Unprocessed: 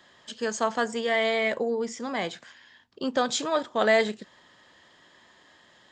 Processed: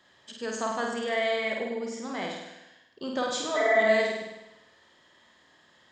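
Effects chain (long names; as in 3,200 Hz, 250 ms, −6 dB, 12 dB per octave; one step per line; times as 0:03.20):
healed spectral selection 0:03.59–0:03.88, 380–2,400 Hz after
flutter between parallel walls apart 8.7 metres, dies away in 0.96 s
level −6 dB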